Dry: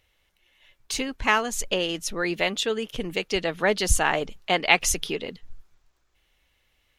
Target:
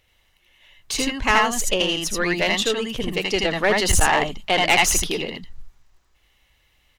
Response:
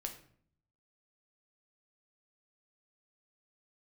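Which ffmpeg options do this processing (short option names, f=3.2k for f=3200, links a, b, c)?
-af "aecho=1:1:79|80:0.501|0.708,aeval=exprs='(tanh(5.01*val(0)+0.45)-tanh(0.45))/5.01':c=same,volume=5dB"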